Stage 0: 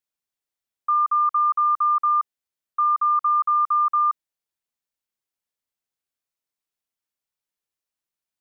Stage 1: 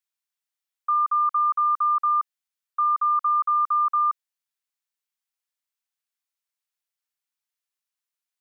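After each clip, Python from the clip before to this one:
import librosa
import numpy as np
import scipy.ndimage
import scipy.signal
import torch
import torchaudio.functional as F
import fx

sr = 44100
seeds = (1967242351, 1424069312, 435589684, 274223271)

y = scipy.signal.sosfilt(scipy.signal.butter(2, 1000.0, 'highpass', fs=sr, output='sos'), x)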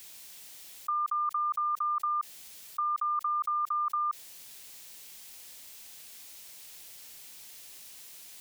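y = fx.peak_eq(x, sr, hz=1300.0, db=-9.0, octaves=1.2)
y = fx.env_flatten(y, sr, amount_pct=100)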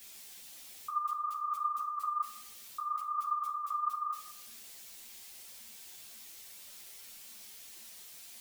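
y = fx.rev_fdn(x, sr, rt60_s=0.66, lf_ratio=0.8, hf_ratio=0.75, size_ms=26.0, drr_db=2.5)
y = fx.ensemble(y, sr)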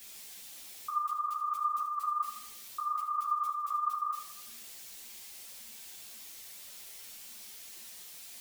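y = fx.echo_feedback(x, sr, ms=77, feedback_pct=44, wet_db=-10.0)
y = y * 10.0 ** (2.0 / 20.0)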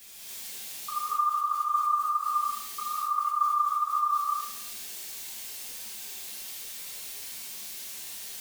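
y = fx.rev_gated(x, sr, seeds[0], gate_ms=320, shape='rising', drr_db=-7.5)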